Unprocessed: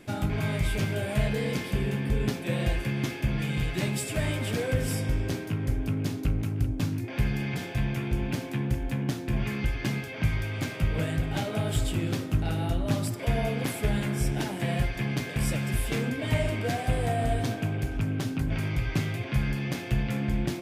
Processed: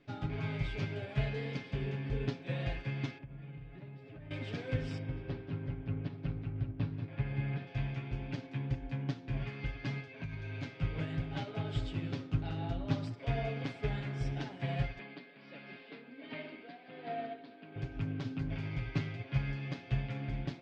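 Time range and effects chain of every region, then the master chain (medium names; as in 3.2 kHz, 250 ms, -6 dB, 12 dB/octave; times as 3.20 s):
3.18–4.31 s: compression 12:1, threshold -30 dBFS + tape spacing loss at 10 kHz 37 dB
4.98–7.67 s: high-pass 57 Hz + distance through air 260 m + delay 188 ms -6 dB
10.11–10.63 s: rippled EQ curve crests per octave 1.5, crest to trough 7 dB + compression 8:1, threshold -26 dBFS
14.99–17.76 s: Chebyshev band-pass 190–4600 Hz, order 4 + tremolo 1.4 Hz, depth 55%
whole clip: low-pass 4.9 kHz 24 dB/octave; comb 7.2 ms, depth 57%; upward expansion 1.5:1, over -36 dBFS; trim -7 dB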